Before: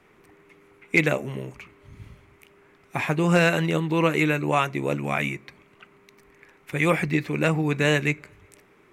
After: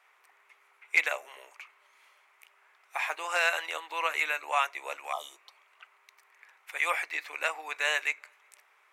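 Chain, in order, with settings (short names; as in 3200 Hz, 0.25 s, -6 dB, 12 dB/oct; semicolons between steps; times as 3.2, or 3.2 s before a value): inverse Chebyshev high-pass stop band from 160 Hz, stop band 70 dB; spectral repair 5.15–5.6, 1300–2900 Hz after; gain -3 dB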